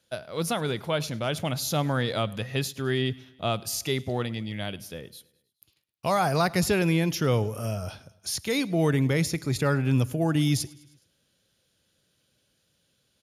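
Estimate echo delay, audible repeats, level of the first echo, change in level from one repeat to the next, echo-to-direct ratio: 104 ms, 3, -23.0 dB, -4.5 dB, -21.5 dB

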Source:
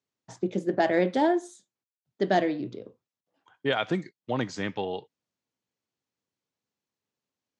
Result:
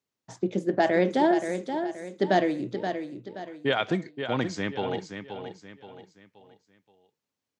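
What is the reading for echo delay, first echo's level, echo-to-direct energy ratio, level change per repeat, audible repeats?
526 ms, -8.0 dB, -7.5 dB, -8.5 dB, 4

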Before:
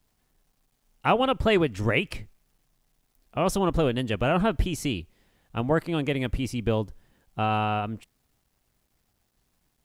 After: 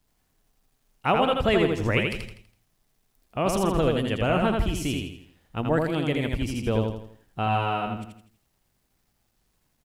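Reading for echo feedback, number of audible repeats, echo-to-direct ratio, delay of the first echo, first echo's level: 41%, 5, -2.5 dB, 82 ms, -3.5 dB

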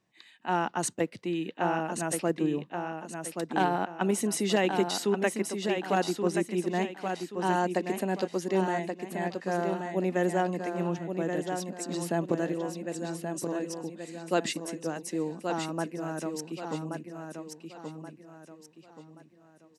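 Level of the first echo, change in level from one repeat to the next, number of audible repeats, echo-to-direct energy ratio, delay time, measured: -6.0 dB, -9.0 dB, 4, -5.5 dB, 1128 ms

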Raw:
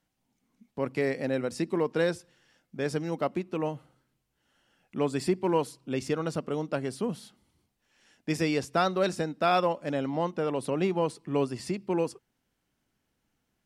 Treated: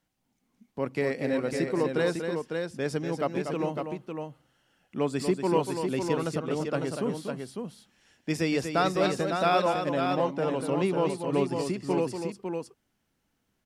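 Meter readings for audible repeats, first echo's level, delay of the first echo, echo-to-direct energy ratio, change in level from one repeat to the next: 2, -7.5 dB, 240 ms, -3.5 dB, no regular repeats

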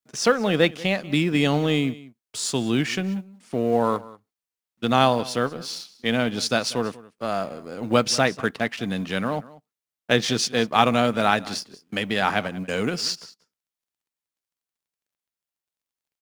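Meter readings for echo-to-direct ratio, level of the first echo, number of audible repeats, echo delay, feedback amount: -20.0 dB, -20.0 dB, 1, 188 ms, no regular repeats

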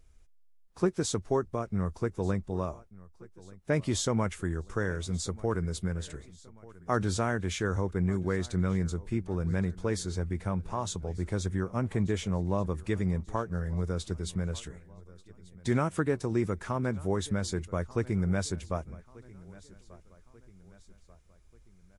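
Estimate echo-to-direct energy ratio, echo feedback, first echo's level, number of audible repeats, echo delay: -20.5 dB, 47%, -21.5 dB, 3, 1188 ms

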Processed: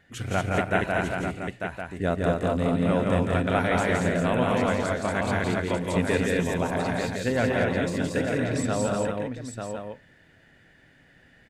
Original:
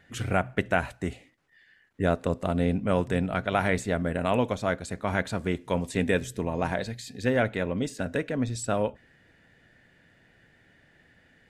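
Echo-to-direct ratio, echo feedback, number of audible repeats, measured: 2.5 dB, no regular repeats, 7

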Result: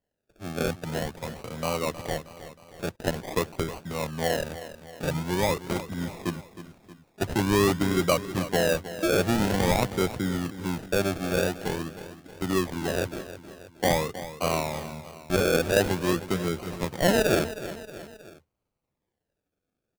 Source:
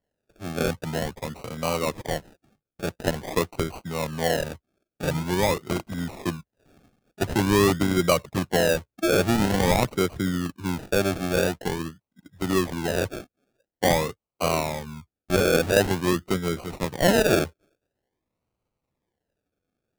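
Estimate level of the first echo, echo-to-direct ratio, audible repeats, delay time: -13.5 dB, -12.0 dB, 3, 315 ms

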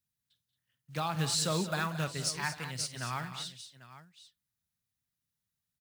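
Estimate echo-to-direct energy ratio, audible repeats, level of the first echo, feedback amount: -8.0 dB, 4, -14.5 dB, no regular repeats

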